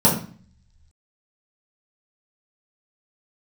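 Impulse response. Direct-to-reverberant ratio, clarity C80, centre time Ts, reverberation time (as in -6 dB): -7.0 dB, 11.0 dB, 28 ms, 0.45 s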